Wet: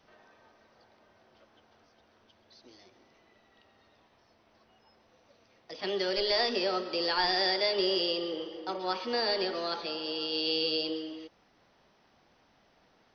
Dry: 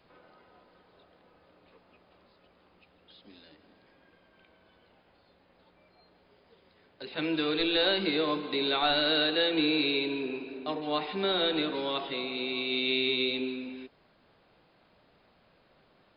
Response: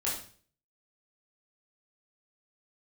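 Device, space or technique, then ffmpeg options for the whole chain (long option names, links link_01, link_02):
nightcore: -af "asetrate=54243,aresample=44100,volume=-1.5dB"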